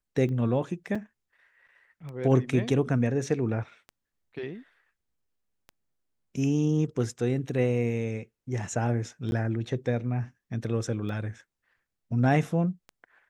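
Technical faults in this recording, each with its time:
tick 33 1/3 rpm -28 dBFS
0.95 gap 4.8 ms
9.31–9.32 gap 11 ms

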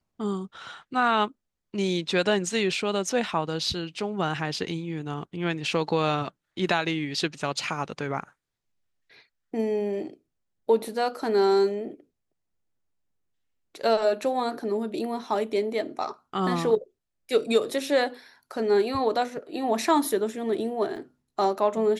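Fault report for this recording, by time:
20.96 gap 4.4 ms

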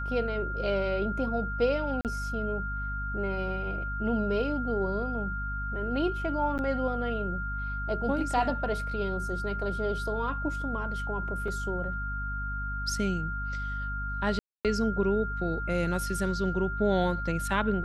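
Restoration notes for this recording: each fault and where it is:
hum 50 Hz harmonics 5 -35 dBFS
tone 1400 Hz -34 dBFS
2.01–2.05 gap 38 ms
6.58–6.59 gap 9.1 ms
11.48 gap 2.7 ms
14.39–14.65 gap 0.257 s

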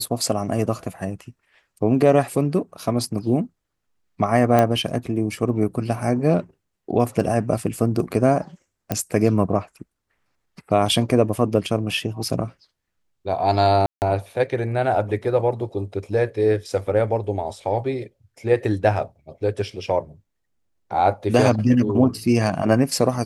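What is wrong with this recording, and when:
4.59 pop -6 dBFS
8.92 pop -8 dBFS
13.86–14.02 gap 0.159 s

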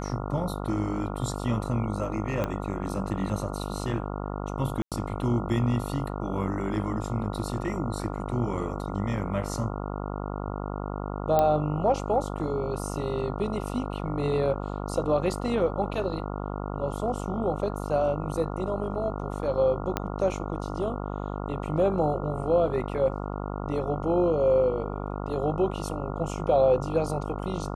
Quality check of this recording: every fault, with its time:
buzz 50 Hz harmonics 28 -33 dBFS
2.44 pop -15 dBFS
4.82–4.92 gap 97 ms
11.39 pop -11 dBFS
19.97 pop -11 dBFS

